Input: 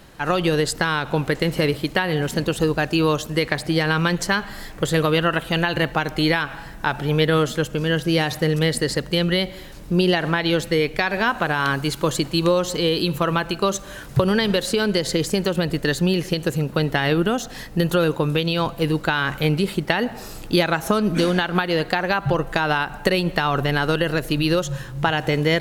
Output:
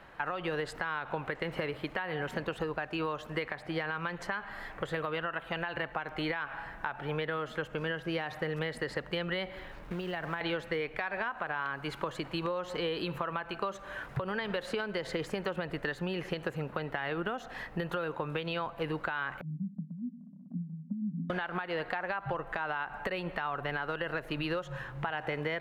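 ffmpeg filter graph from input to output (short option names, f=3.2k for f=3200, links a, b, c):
-filter_complex "[0:a]asettb=1/sr,asplit=3[a][b][c];[a]atrim=end=9.564[d];[b]atrim=start=9.56:end=10.41,asetpts=PTS-STARTPTS,afade=t=in:d=0.004:c=qsin,afade=t=out:st=0.846:d=0.004:c=qsin,lowshelf=f=120:g=10,acrossover=split=170|6200[e][f][g];[e]acompressor=threshold=-35dB:ratio=4[h];[f]acompressor=threshold=-28dB:ratio=4[i];[g]acompressor=threshold=-58dB:ratio=4[j];[h][i][j]amix=inputs=3:normalize=0,acrusher=bits=4:mode=log:mix=0:aa=0.000001[k];[c]atrim=start=10.406[l];[d][k]acrossfade=d=0.004:c1=hsin:c2=qsin[m];[m][l]acrossfade=d=0.004:c1=qsin:c2=hsin,asettb=1/sr,asplit=3[n][o][p];[n]atrim=end=19.414[q];[o]atrim=start=19.41:end=21.3,asetpts=PTS-STARTPTS,afade=t=in:d=0.004:c=qsin,afade=t=out:st=1.886:d=0.004:c=qsin,asuperpass=centerf=200:order=12:qfactor=1.9,acompressor=mode=upward:threshold=-29dB:ratio=2.5:attack=3.2:release=140:knee=2.83:detection=peak[r];[p]atrim=start=21.296[s];[q][r]acrossfade=d=0.004:c1=hsin:c2=qsin[t];[t][s]acrossfade=d=0.004:c1=qsin:c2=hsin,acrossover=split=590 2500:gain=0.251 1 0.0794[u][v][w];[u][v][w]amix=inputs=3:normalize=0,alimiter=limit=-17dB:level=0:latency=1:release=391,acompressor=threshold=-30dB:ratio=6"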